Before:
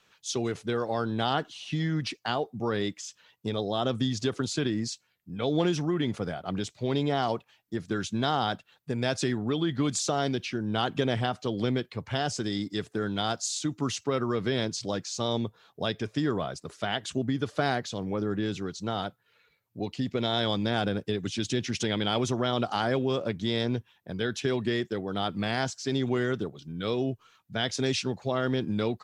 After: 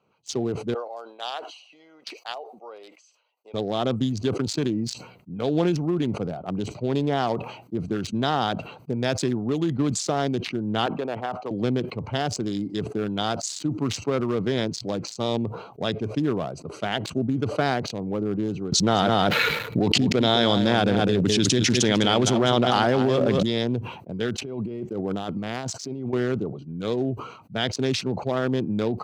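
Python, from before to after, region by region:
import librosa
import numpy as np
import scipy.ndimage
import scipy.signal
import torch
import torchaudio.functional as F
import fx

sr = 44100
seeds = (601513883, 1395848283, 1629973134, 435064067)

y = fx.chain(x, sr, fx.highpass(hz=640.0, slope=24),
    fx.peak_eq(hz=1100.0, db=-7.5, octaves=1.9), at=(0.74, 3.54))
y = fx.chain(y, sr, fx.bandpass_q(hz=1000.0, q=0.93),
    fx.band_squash(depth_pct=70), at=(10.86, 11.51))
y = fx.chain(y, sr, fx.echo_single(ms=204, db=-8.5),
    fx.env_flatten(amount_pct=100), at=(18.72, 23.43))
y = fx.chain(y, sr, fx.high_shelf(hz=8600.0, db=5.5),
    fx.over_compress(threshold_db=-33.0, ratio=-1.0), at=(24.38, 26.13))
y = fx.wiener(y, sr, points=25)
y = scipy.signal.sosfilt(scipy.signal.butter(2, 100.0, 'highpass', fs=sr, output='sos'), y)
y = fx.sustainer(y, sr, db_per_s=80.0)
y = y * 10.0 ** (4.0 / 20.0)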